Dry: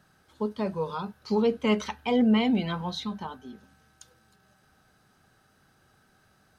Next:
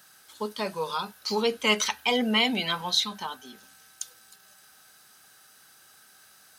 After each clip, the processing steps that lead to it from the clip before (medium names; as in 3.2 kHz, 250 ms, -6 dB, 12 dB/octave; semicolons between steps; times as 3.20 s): tilt EQ +4.5 dB/octave; trim +3.5 dB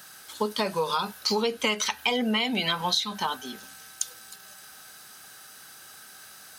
compression 12:1, threshold -30 dBFS, peak gain reduction 13.5 dB; trim +8 dB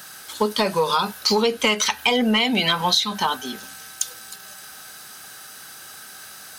saturation -13 dBFS, distortion -24 dB; trim +7 dB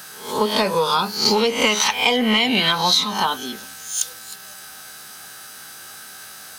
reverse spectral sustain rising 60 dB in 0.49 s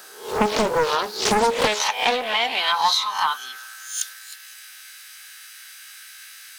high-pass sweep 390 Hz -> 2.1 kHz, 1.18–4.49 s; loudspeaker Doppler distortion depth 0.85 ms; trim -4.5 dB